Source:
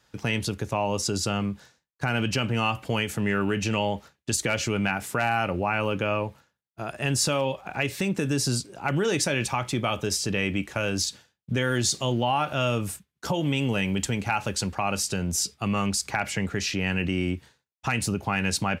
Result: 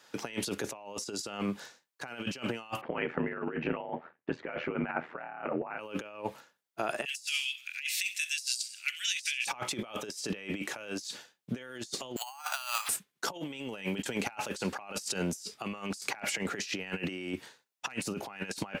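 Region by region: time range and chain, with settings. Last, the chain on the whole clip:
2.81–5.79 LPF 2000 Hz 24 dB/oct + ring modulator 40 Hz
7.05–9.47 steep high-pass 2200 Hz + feedback echo 66 ms, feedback 50%, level -18 dB
12.16–12.89 careless resampling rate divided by 6×, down none, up hold + steep high-pass 800 Hz 48 dB/oct
whole clip: HPF 310 Hz 12 dB/oct; negative-ratio compressor -35 dBFS, ratio -0.5

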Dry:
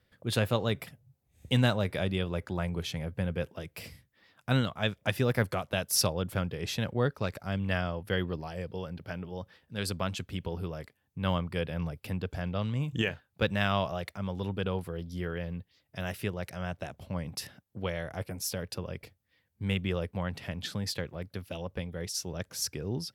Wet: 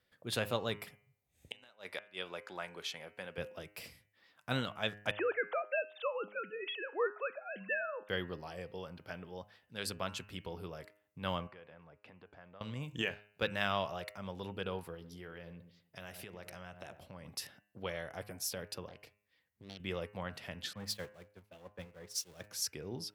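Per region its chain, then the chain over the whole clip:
1.48–3.38 weighting filter A + flipped gate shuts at -20 dBFS, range -29 dB
5.11–8.09 sine-wave speech + HPF 410 Hz
11.47–12.61 compressor 5:1, threshold -40 dBFS + LPF 1500 Hz + tilt +2.5 dB/oct
14.94–17.29 darkening echo 99 ms, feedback 36%, low-pass 860 Hz, level -13 dB + compressor 5:1, threshold -36 dBFS
18.88–19.8 compressor 2:1, threshold -45 dBFS + Doppler distortion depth 0.75 ms
20.73–22.48 zero-crossing step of -38 dBFS + expander -28 dBFS + three-band expander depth 70%
whole clip: low shelf 240 Hz -10.5 dB; de-hum 103.6 Hz, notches 29; gain -3.5 dB

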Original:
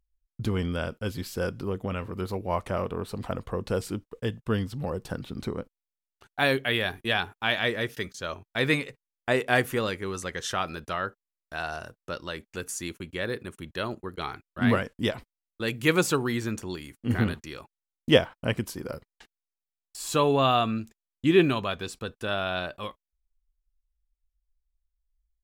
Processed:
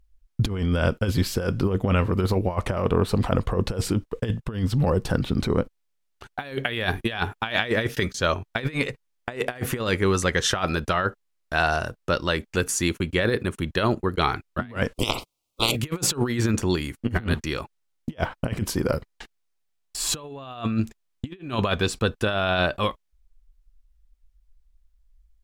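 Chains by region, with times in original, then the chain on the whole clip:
14.93–15.75 spectral limiter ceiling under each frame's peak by 27 dB + Butterworth band-stop 1700 Hz, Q 1.4 + bell 190 Hz -5.5 dB 0.26 oct
whole clip: high shelf 8900 Hz -6.5 dB; negative-ratio compressor -31 dBFS, ratio -0.5; low shelf 82 Hz +7.5 dB; gain +7 dB

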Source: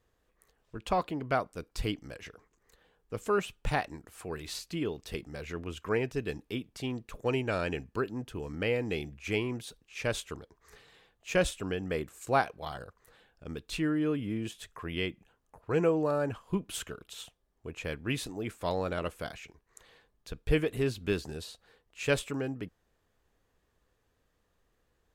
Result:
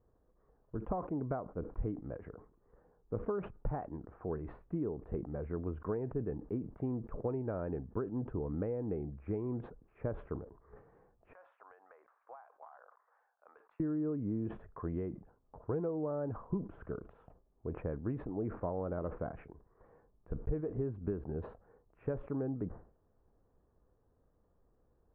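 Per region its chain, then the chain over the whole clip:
11.33–13.8 HPF 840 Hz 24 dB/oct + compressor 16:1, threshold -46 dBFS
whole clip: compressor 12:1, threshold -34 dBFS; Bessel low-pass 790 Hz, order 6; sustainer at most 120 dB/s; gain +3 dB

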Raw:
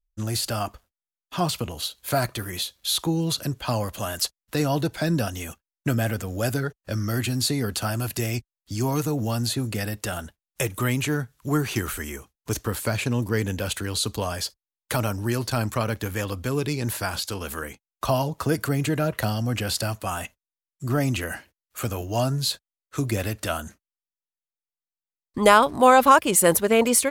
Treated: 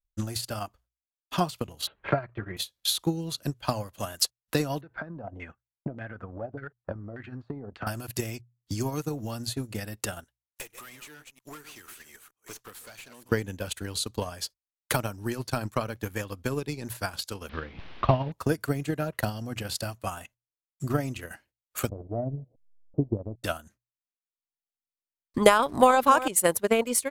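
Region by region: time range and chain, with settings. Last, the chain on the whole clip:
1.87–2.57 LPF 2400 Hz 24 dB/oct + notch comb 250 Hz + three-band squash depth 70%
4.81–7.87 air absorption 62 m + compressor 8:1, threshold -29 dBFS + LFO low-pass saw down 1.7 Hz 580–2100 Hz
10.24–13.32 reverse delay 0.23 s, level -9 dB + HPF 1300 Hz 6 dB/oct + tube stage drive 36 dB, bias 0.55
17.49–18.32 delta modulation 32 kbps, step -31 dBFS + LPF 3400 Hz 24 dB/oct + low shelf 260 Hz +7.5 dB
21.89–23.44 level-crossing sampler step -34 dBFS + steep low-pass 680 Hz 48 dB/oct
25.59–26.28 echo 0.298 s -11.5 dB + fast leveller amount 50%
whole clip: notches 60/120 Hz; transient shaper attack +11 dB, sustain -10 dB; gain -8.5 dB

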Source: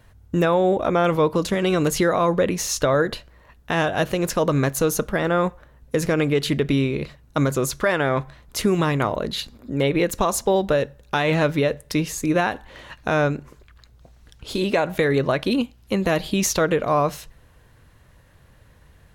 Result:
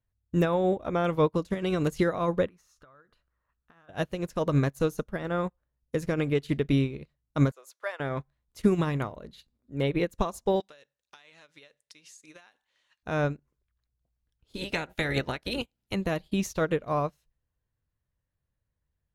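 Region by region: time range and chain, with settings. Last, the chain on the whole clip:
2.47–3.89 bell 1300 Hz +14 dB 0.81 oct + compressor 4:1, threshold -30 dBFS
7.51–8 HPF 550 Hz 24 dB/oct + mismatched tape noise reduction encoder only
10.6–13.03 weighting filter ITU-R 468 + compressor 8:1, threshold -23 dBFS
14.56–15.94 spectral limiter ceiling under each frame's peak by 18 dB + notch 1100 Hz, Q 6.4
whole clip: low shelf 200 Hz +7 dB; upward expander 2.5:1, over -34 dBFS; gain -3 dB

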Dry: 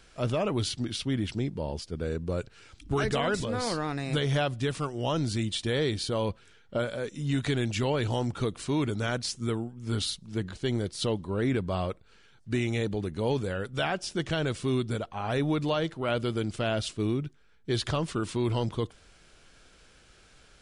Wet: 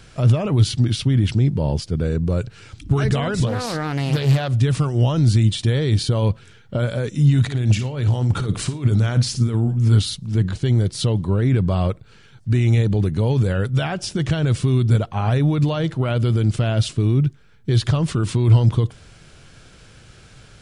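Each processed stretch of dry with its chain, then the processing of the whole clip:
3.46–4.54 low shelf 190 Hz -8 dB + Doppler distortion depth 0.43 ms
7.41–9.89 negative-ratio compressor -33 dBFS, ratio -0.5 + flutter echo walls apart 9.5 m, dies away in 0.25 s
whole clip: limiter -25 dBFS; bell 120 Hz +13 dB 1.2 oct; gain +8.5 dB

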